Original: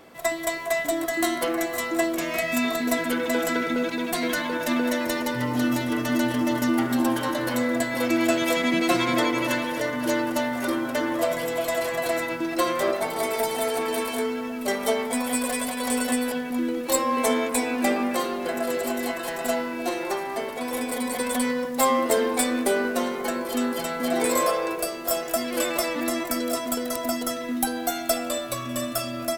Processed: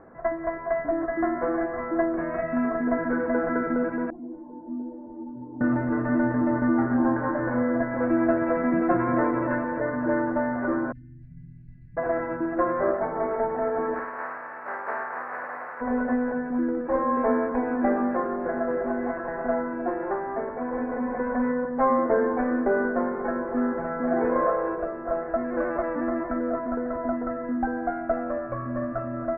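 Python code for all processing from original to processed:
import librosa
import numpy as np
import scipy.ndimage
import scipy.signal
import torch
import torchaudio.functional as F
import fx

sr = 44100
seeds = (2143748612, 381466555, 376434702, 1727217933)

y = fx.chain(x, sr, fx.formant_cascade(vowel='u'),
    fx.ensemble(), at=(4.1, 5.61))
y = fx.chain(y, sr, fx.ellip_bandstop(low_hz=150.0, high_hz=4000.0, order=3, stop_db=60),
    fx.air_absorb(metres=150.0), at=(10.92, 11.97))
y = fx.spec_flatten(y, sr, power=0.28, at=(13.94, 15.8), fade=0.02)
y = fx.highpass(y, sr, hz=610.0, slope=12, at=(13.94, 15.8), fade=0.02)
y = fx.room_flutter(y, sr, wall_m=9.1, rt60_s=0.63, at=(13.94, 15.8), fade=0.02)
y = scipy.signal.sosfilt(scipy.signal.ellip(4, 1.0, 50, 1700.0, 'lowpass', fs=sr, output='sos'), y)
y = fx.low_shelf(y, sr, hz=100.0, db=9.5)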